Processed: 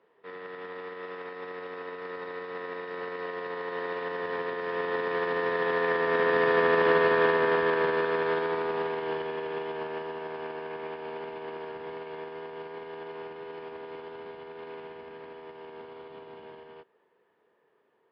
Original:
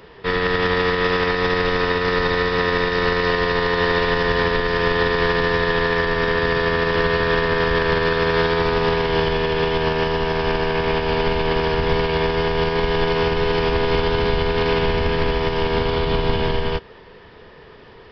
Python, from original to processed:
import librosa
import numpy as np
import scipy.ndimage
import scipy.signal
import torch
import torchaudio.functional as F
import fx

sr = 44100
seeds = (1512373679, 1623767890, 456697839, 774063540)

y = fx.doppler_pass(x, sr, speed_mps=5, closest_m=4.0, pass_at_s=6.83)
y = fx.bandpass_edges(y, sr, low_hz=330.0, high_hz=3200.0)
y = fx.high_shelf(y, sr, hz=2100.0, db=-10.0)